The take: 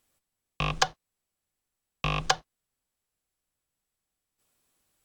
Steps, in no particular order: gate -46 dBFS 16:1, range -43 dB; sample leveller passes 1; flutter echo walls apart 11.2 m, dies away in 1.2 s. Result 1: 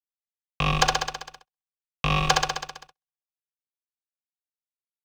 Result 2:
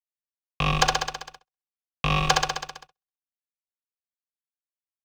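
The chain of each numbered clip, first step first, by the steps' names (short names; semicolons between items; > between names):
flutter echo > sample leveller > gate; flutter echo > gate > sample leveller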